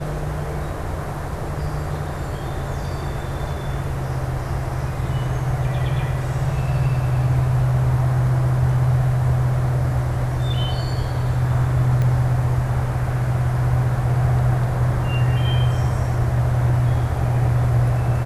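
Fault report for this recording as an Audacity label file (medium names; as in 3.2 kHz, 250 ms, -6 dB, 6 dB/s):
12.020000	12.020000	pop -13 dBFS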